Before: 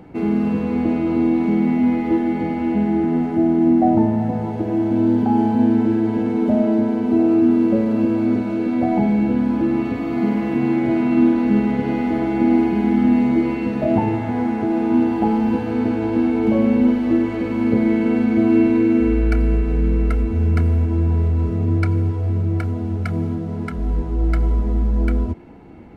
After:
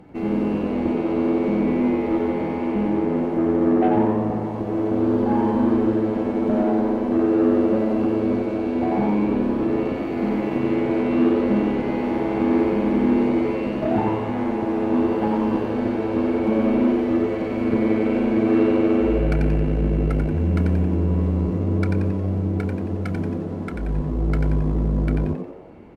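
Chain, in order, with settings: added harmonics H 8 -25 dB, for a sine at -3.5 dBFS; frequency-shifting echo 90 ms, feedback 46%, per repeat +99 Hz, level -5 dB; gain -4.5 dB

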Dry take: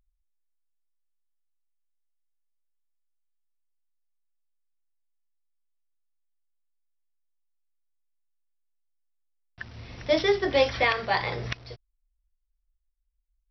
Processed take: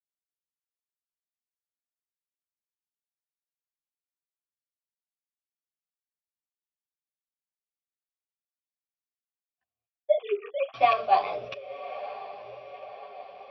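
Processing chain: 9.86–10.74 sine-wave speech; AGC gain up to 10 dB; vowel filter a; gate -43 dBFS, range -31 dB; high shelf 2200 Hz +7.5 dB; on a send: diffused feedback echo 1.097 s, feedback 69%, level -9.5 dB; on the sum: chorus voices 2, 1.2 Hz, delay 10 ms, depth 3 ms; low shelf 420 Hz +10.5 dB; three-band expander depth 40%

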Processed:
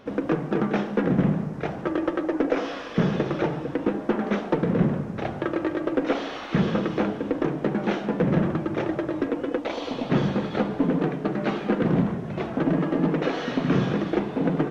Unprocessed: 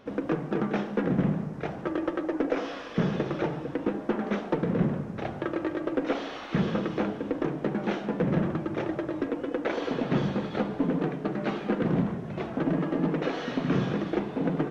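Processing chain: 9.59–10.1 fifteen-band EQ 160 Hz -9 dB, 400 Hz -8 dB, 1600 Hz -10 dB, 4000 Hz +3 dB; gain +4 dB

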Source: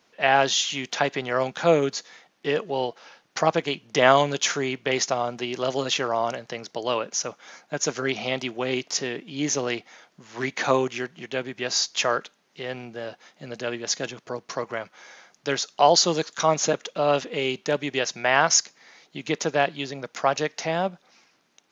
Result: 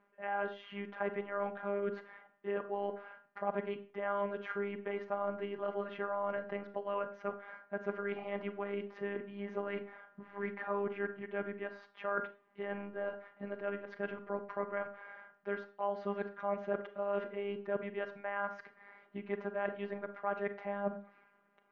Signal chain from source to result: robotiser 201 Hz; reverse; compressor 6:1, threshold -32 dBFS, peak gain reduction 18.5 dB; reverse; LPF 1800 Hz 24 dB/oct; Schroeder reverb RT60 0.32 s, combs from 27 ms, DRR 10 dB; gain +1 dB

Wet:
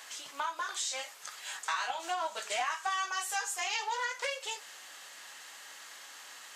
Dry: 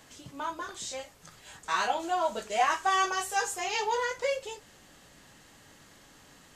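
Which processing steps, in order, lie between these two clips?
HPF 1000 Hz 12 dB/oct; compressor 5:1, threshold -41 dBFS, peak gain reduction 15 dB; Doppler distortion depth 0.23 ms; gain +9 dB

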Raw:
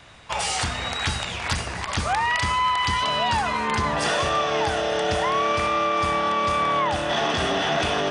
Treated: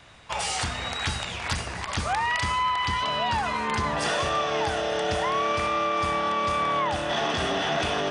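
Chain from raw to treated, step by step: 2.63–3.43 high shelf 6900 Hz -8 dB; gain -3 dB

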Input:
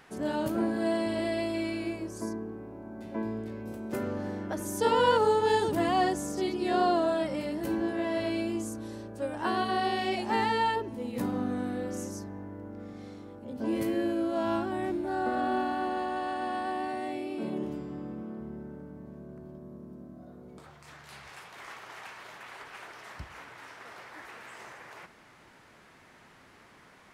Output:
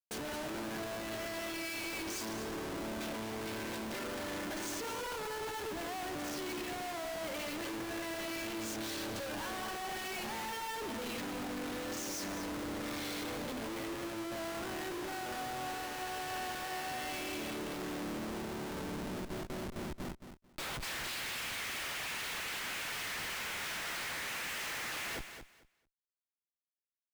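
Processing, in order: treble ducked by the level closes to 1500 Hz, closed at -25 dBFS; weighting filter D; gate with hold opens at -38 dBFS; tilt +2 dB/oct; reverse; compressor 5:1, threshold -42 dBFS, peak gain reduction 19 dB; reverse; Schmitt trigger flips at -54.5 dBFS; feedback echo 0.221 s, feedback 19%, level -9.5 dB; gain +5 dB

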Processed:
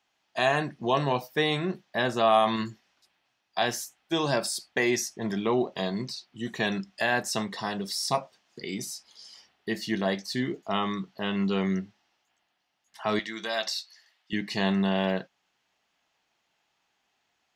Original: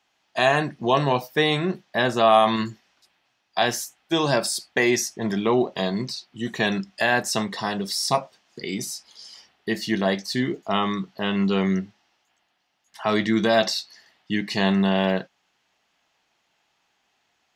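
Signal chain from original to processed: 13.19–14.33 HPF 1400 Hz 6 dB/oct; gain -5 dB

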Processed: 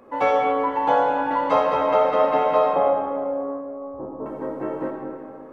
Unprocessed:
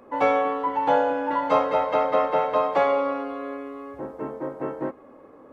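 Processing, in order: 2.73–4.26 LPF 1000 Hz 24 dB/oct; digital reverb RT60 2.4 s, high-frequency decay 0.5×, pre-delay 20 ms, DRR 1 dB

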